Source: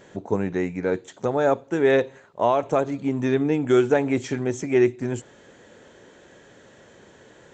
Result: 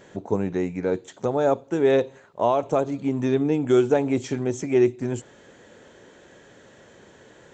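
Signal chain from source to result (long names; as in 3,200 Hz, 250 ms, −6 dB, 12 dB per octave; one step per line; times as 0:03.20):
dynamic equaliser 1,800 Hz, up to −7 dB, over −42 dBFS, Q 1.5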